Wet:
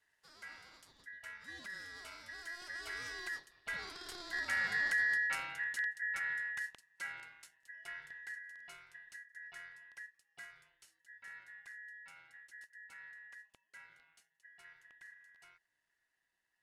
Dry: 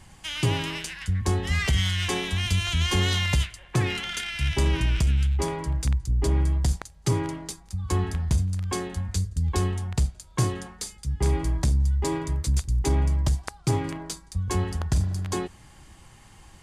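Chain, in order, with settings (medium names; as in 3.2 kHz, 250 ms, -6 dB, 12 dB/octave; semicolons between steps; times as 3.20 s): Doppler pass-by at 5.09 s, 7 m/s, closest 5.1 m; frequency shift +40 Hz; ring modulator 1.8 kHz; trim -8.5 dB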